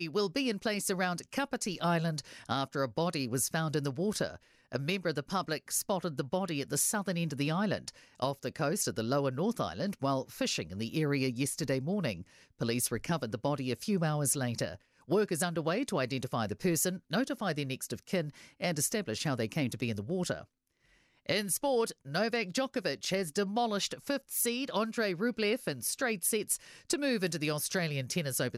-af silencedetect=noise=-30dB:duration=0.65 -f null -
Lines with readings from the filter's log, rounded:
silence_start: 20.34
silence_end: 21.29 | silence_duration: 0.95